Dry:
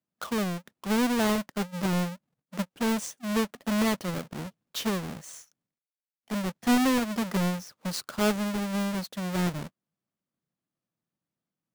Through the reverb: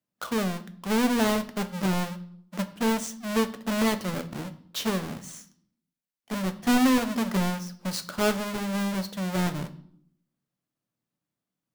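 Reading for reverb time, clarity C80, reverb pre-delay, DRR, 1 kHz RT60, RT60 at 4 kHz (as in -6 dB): 0.65 s, 18.5 dB, 7 ms, 9.0 dB, 0.60 s, 0.55 s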